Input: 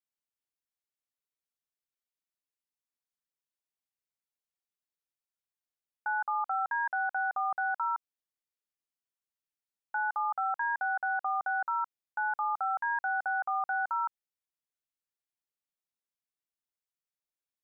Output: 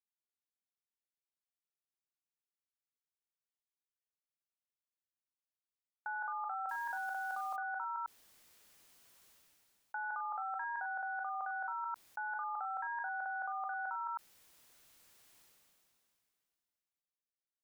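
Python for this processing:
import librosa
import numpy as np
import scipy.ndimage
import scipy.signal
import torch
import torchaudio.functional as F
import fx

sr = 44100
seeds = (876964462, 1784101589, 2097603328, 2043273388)

p1 = x + fx.echo_single(x, sr, ms=99, db=-8.5, dry=0)
p2 = fx.level_steps(p1, sr, step_db=22)
p3 = fx.quant_companded(p2, sr, bits=6, at=(6.69, 7.56))
p4 = fx.sustainer(p3, sr, db_per_s=21.0)
y = p4 * librosa.db_to_amplitude(4.5)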